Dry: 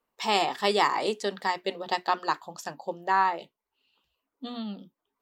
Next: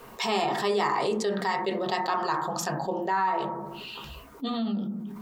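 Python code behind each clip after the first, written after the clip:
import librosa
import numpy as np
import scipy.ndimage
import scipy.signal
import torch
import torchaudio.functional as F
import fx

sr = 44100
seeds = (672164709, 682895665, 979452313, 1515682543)

y = fx.low_shelf(x, sr, hz=180.0, db=5.5)
y = fx.rev_fdn(y, sr, rt60_s=0.5, lf_ratio=1.3, hf_ratio=0.25, size_ms=43.0, drr_db=2.0)
y = fx.env_flatten(y, sr, amount_pct=70)
y = y * librosa.db_to_amplitude(-8.5)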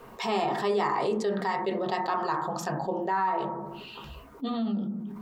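y = fx.high_shelf(x, sr, hz=2400.0, db=-8.0)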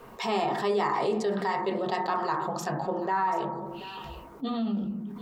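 y = x + 10.0 ** (-16.0 / 20.0) * np.pad(x, (int(735 * sr / 1000.0), 0))[:len(x)]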